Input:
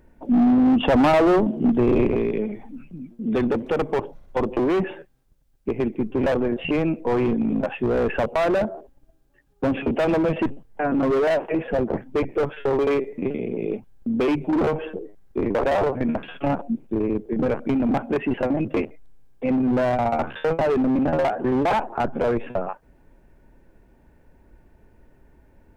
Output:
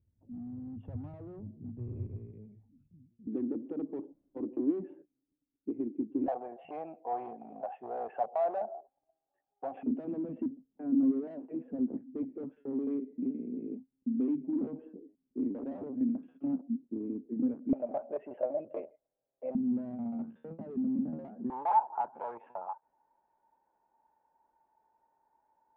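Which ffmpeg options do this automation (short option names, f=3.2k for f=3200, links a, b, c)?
-af "asetnsamples=n=441:p=0,asendcmd='3.27 bandpass f 290;6.28 bandpass f 740;9.83 bandpass f 260;17.73 bandpass f 600;19.55 bandpass f 220;21.5 bandpass f 890',bandpass=f=100:t=q:w=10:csg=0"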